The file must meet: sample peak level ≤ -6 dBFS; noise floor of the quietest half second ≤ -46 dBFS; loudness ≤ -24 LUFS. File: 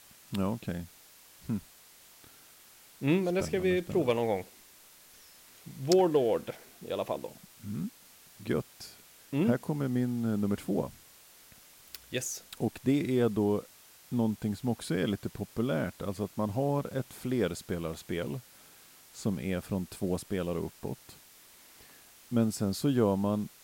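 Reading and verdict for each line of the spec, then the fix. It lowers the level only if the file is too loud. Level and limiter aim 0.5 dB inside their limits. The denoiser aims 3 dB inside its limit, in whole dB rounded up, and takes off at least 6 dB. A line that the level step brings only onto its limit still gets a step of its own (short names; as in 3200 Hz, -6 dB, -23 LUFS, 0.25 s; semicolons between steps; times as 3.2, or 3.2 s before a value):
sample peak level -7.0 dBFS: OK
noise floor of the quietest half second -57 dBFS: OK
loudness -32.0 LUFS: OK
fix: none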